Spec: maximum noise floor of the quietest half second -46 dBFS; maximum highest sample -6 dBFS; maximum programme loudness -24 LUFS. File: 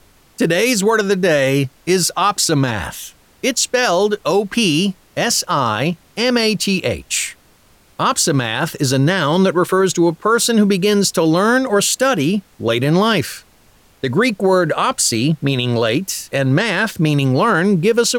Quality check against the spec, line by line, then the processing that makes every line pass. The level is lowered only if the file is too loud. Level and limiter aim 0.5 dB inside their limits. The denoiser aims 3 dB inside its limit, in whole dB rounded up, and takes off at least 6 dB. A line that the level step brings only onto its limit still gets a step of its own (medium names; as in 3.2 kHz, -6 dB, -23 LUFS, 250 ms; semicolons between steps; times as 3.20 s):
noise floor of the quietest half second -51 dBFS: pass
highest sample -5.5 dBFS: fail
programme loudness -16.0 LUFS: fail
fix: trim -8.5 dB